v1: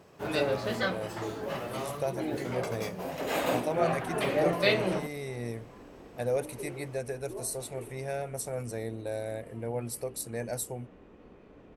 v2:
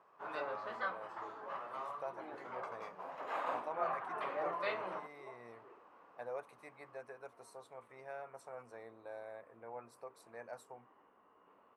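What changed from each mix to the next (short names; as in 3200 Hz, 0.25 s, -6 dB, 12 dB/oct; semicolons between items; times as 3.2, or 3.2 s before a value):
second sound: entry -2.10 s; master: add band-pass 1100 Hz, Q 3.1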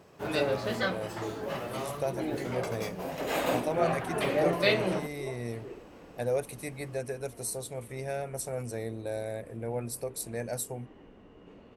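master: remove band-pass 1100 Hz, Q 3.1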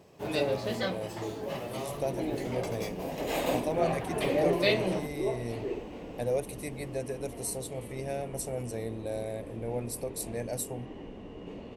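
second sound +10.0 dB; master: add bell 1400 Hz -9 dB 0.64 oct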